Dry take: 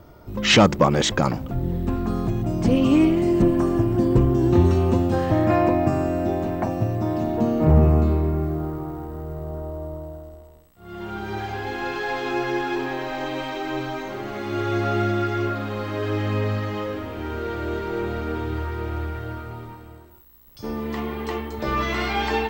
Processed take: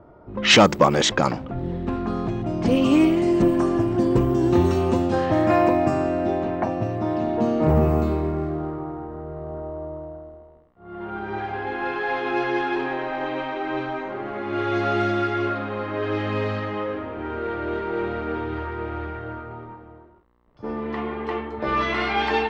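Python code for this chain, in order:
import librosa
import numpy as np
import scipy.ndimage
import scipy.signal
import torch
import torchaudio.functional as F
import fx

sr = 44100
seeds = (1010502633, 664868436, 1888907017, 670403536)

y = fx.env_lowpass(x, sr, base_hz=1100.0, full_db=-13.5)
y = fx.low_shelf(y, sr, hz=170.0, db=-10.5)
y = F.gain(torch.from_numpy(y), 2.5).numpy()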